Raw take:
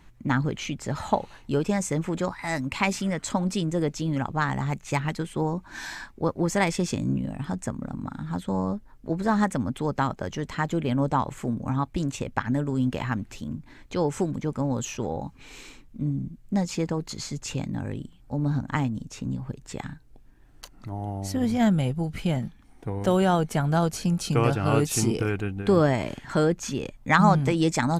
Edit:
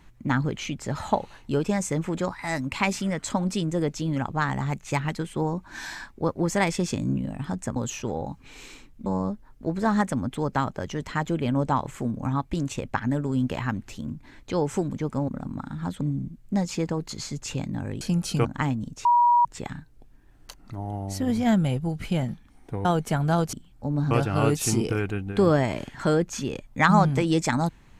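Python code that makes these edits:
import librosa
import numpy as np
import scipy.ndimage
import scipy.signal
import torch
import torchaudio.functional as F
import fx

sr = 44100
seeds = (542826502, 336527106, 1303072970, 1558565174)

y = fx.edit(x, sr, fx.swap(start_s=7.76, length_s=0.73, other_s=14.71, other_length_s=1.3),
    fx.swap(start_s=18.01, length_s=0.58, other_s=23.97, other_length_s=0.44),
    fx.bleep(start_s=19.19, length_s=0.4, hz=960.0, db=-15.0),
    fx.cut(start_s=22.99, length_s=0.3), tone=tone)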